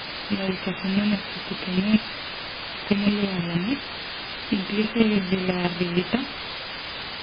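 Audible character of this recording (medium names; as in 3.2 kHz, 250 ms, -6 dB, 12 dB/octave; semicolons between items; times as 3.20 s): a buzz of ramps at a fixed pitch in blocks of 16 samples; chopped level 6.2 Hz, depth 60%, duty 15%; a quantiser's noise floor 6-bit, dither triangular; MP3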